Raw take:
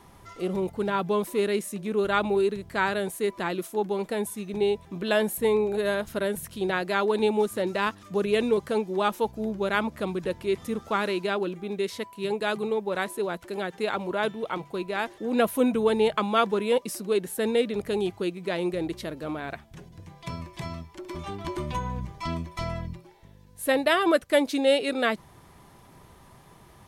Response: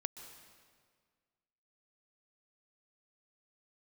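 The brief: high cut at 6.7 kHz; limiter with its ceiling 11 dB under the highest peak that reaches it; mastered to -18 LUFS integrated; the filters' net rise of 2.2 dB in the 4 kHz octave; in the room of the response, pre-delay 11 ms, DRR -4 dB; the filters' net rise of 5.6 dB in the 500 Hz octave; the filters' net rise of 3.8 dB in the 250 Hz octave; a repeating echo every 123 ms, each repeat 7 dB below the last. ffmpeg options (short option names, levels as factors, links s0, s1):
-filter_complex "[0:a]lowpass=6700,equalizer=f=250:t=o:g=3,equalizer=f=500:t=o:g=6,equalizer=f=4000:t=o:g=3,alimiter=limit=0.15:level=0:latency=1,aecho=1:1:123|246|369|492|615:0.447|0.201|0.0905|0.0407|0.0183,asplit=2[s0][s1];[1:a]atrim=start_sample=2205,adelay=11[s2];[s1][s2]afir=irnorm=-1:irlink=0,volume=1.88[s3];[s0][s3]amix=inputs=2:normalize=0,volume=1.26"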